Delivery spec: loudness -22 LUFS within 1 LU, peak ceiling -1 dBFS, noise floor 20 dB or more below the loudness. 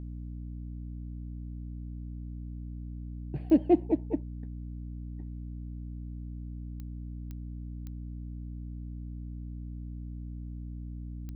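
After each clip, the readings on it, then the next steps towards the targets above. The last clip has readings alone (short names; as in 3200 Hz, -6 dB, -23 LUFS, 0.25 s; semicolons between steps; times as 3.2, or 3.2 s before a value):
clicks 5; hum 60 Hz; harmonics up to 300 Hz; hum level -37 dBFS; loudness -36.5 LUFS; peak -11.0 dBFS; loudness target -22.0 LUFS
-> de-click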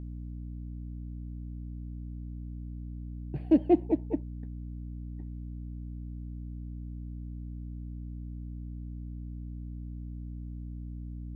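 clicks 0; hum 60 Hz; harmonics up to 300 Hz; hum level -37 dBFS
-> notches 60/120/180/240/300 Hz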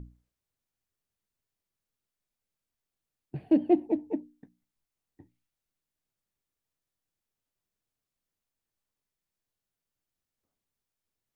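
hum none; loudness -28.0 LUFS; peak -11.5 dBFS; loudness target -22.0 LUFS
-> gain +6 dB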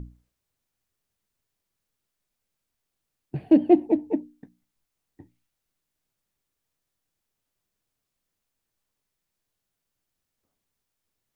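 loudness -22.0 LUFS; peak -5.5 dBFS; noise floor -83 dBFS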